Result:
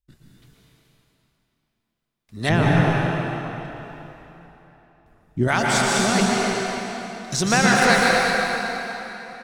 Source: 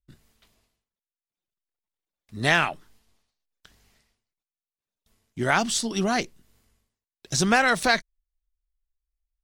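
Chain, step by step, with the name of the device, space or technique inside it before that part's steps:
cave (single-tap delay 247 ms −8.5 dB; convolution reverb RT60 3.5 s, pre-delay 111 ms, DRR −4 dB)
0:02.49–0:05.48: tilt shelving filter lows +10 dB, about 730 Hz

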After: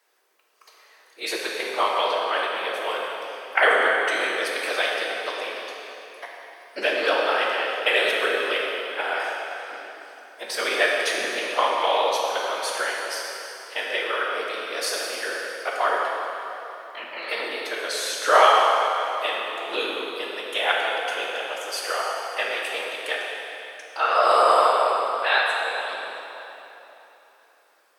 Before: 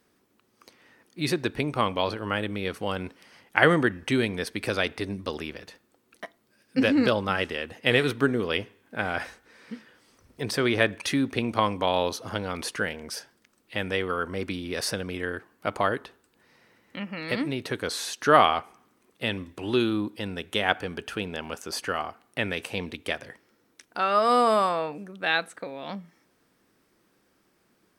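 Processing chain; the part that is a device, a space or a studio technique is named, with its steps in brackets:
whispering ghost (random phases in short frames; high-pass filter 500 Hz 24 dB per octave; convolution reverb RT60 3.3 s, pre-delay 6 ms, DRR −2.5 dB)
level +1 dB

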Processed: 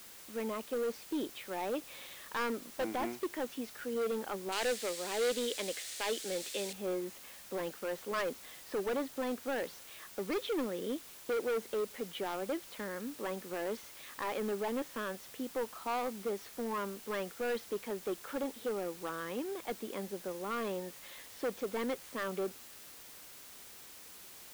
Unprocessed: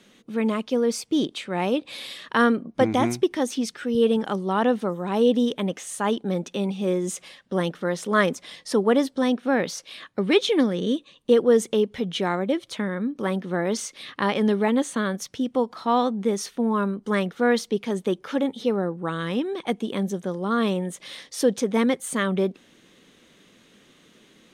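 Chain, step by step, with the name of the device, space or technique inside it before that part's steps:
aircraft radio (band-pass filter 340–2,400 Hz; hard clipping −22 dBFS, distortion −8 dB; white noise bed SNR 14 dB)
0:04.52–0:06.73: graphic EQ with 10 bands 125 Hz −7 dB, 250 Hz −3 dB, 500 Hz +4 dB, 1,000 Hz −6 dB, 2,000 Hz +6 dB, 4,000 Hz +10 dB, 8,000 Hz +11 dB
level −8.5 dB

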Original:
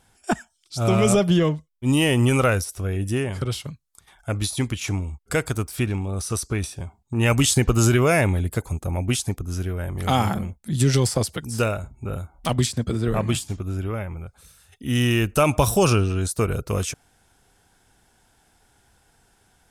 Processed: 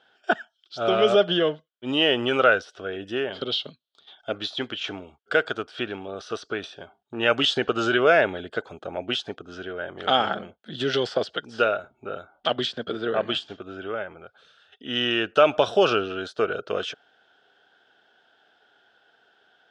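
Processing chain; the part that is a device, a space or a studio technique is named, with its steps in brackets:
phone earpiece (loudspeaker in its box 390–4,000 Hz, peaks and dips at 430 Hz +4 dB, 640 Hz +5 dB, 990 Hz −7 dB, 1,500 Hz +9 dB, 2,200 Hz −8 dB, 3,200 Hz +9 dB)
0:03.32–0:04.33: graphic EQ with 15 bands 250 Hz +6 dB, 1,600 Hz −9 dB, 4,000 Hz +10 dB

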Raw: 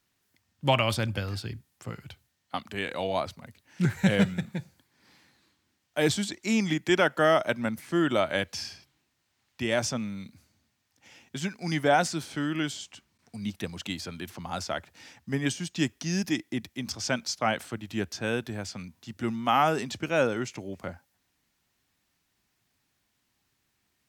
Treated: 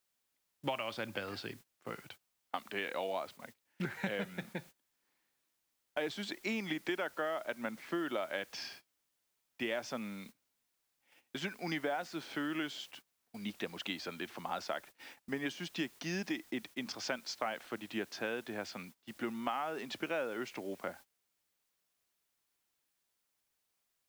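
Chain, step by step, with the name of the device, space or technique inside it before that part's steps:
baby monitor (band-pass filter 310–3,500 Hz; downward compressor 10 to 1, threshold −33 dBFS, peak gain reduction 15.5 dB; white noise bed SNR 21 dB; noise gate −52 dBFS, range −20 dB)

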